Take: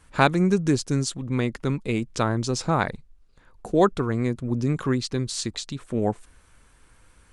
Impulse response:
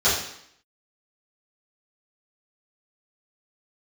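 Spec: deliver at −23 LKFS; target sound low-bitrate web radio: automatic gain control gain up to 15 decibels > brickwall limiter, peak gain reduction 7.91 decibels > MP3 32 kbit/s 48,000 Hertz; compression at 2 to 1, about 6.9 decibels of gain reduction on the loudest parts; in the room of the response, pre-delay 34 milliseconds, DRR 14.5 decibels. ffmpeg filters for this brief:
-filter_complex "[0:a]acompressor=threshold=-25dB:ratio=2,asplit=2[link_01][link_02];[1:a]atrim=start_sample=2205,adelay=34[link_03];[link_02][link_03]afir=irnorm=-1:irlink=0,volume=-32dB[link_04];[link_01][link_04]amix=inputs=2:normalize=0,dynaudnorm=maxgain=15dB,alimiter=limit=-18.5dB:level=0:latency=1,volume=8dB" -ar 48000 -c:a libmp3lame -b:a 32k

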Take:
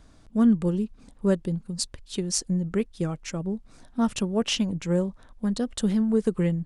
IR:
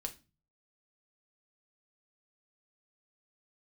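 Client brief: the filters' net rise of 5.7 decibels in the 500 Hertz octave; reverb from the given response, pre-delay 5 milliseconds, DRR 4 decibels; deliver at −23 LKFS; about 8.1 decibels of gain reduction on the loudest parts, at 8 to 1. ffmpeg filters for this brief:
-filter_complex "[0:a]equalizer=frequency=500:width_type=o:gain=7,acompressor=threshold=-22dB:ratio=8,asplit=2[link_01][link_02];[1:a]atrim=start_sample=2205,adelay=5[link_03];[link_02][link_03]afir=irnorm=-1:irlink=0,volume=-2.5dB[link_04];[link_01][link_04]amix=inputs=2:normalize=0,volume=3dB"

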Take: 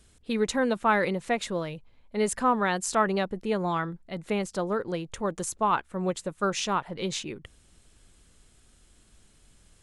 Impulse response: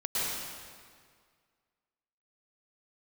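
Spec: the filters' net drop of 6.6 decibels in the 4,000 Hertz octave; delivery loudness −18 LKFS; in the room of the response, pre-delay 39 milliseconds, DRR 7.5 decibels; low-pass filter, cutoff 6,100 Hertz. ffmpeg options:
-filter_complex "[0:a]lowpass=6100,equalizer=frequency=4000:width_type=o:gain=-8,asplit=2[link_01][link_02];[1:a]atrim=start_sample=2205,adelay=39[link_03];[link_02][link_03]afir=irnorm=-1:irlink=0,volume=-16dB[link_04];[link_01][link_04]amix=inputs=2:normalize=0,volume=10.5dB"

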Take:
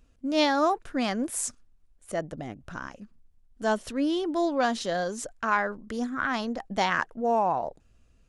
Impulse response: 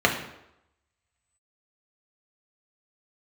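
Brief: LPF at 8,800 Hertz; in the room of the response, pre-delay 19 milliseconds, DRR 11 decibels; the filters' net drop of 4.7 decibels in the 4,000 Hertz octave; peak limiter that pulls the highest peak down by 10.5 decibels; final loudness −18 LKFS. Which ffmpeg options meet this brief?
-filter_complex "[0:a]lowpass=8800,equalizer=frequency=4000:width_type=o:gain=-6,alimiter=limit=-22dB:level=0:latency=1,asplit=2[link_01][link_02];[1:a]atrim=start_sample=2205,adelay=19[link_03];[link_02][link_03]afir=irnorm=-1:irlink=0,volume=-29dB[link_04];[link_01][link_04]amix=inputs=2:normalize=0,volume=14dB"

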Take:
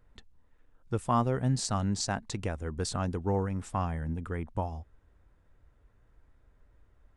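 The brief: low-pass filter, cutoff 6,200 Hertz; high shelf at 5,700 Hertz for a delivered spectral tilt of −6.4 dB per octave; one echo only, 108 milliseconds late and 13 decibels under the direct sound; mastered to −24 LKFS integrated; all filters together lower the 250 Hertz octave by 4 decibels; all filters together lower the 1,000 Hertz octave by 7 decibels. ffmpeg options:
ffmpeg -i in.wav -af "lowpass=6200,equalizer=frequency=250:width_type=o:gain=-5,equalizer=frequency=1000:width_type=o:gain=-8.5,highshelf=frequency=5700:gain=-8,aecho=1:1:108:0.224,volume=11dB" out.wav

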